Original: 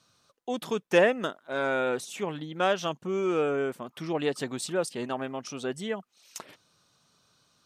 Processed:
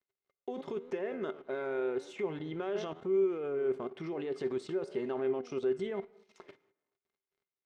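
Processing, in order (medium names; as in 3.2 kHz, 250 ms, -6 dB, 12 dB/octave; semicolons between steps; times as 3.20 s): flange 0.95 Hz, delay 9.9 ms, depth 6.2 ms, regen +85%; in parallel at +2.5 dB: compressor with a negative ratio -33 dBFS, ratio -0.5; on the sum: peak limiter -24.5 dBFS, peak gain reduction 10.5 dB; crossover distortion -56 dBFS; tape spacing loss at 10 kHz 23 dB; reverberation RT60 0.95 s, pre-delay 37 ms, DRR 19 dB; level held to a coarse grid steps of 13 dB; bass shelf 190 Hz -5 dB; small resonant body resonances 390/2100 Hz, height 16 dB, ringing for 95 ms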